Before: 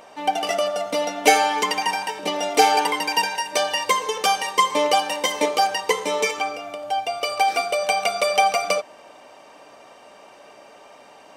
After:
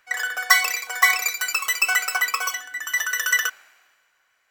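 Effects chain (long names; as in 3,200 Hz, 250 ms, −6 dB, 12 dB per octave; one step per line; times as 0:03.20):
change of speed 2.52×
multiband upward and downward expander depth 70%
level −2 dB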